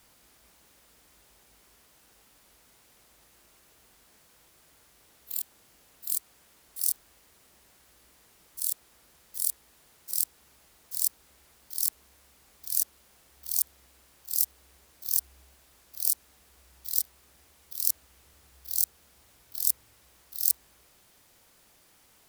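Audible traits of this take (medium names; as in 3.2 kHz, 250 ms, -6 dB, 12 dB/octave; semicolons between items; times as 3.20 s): noise floor -62 dBFS; spectral tilt +2.5 dB/octave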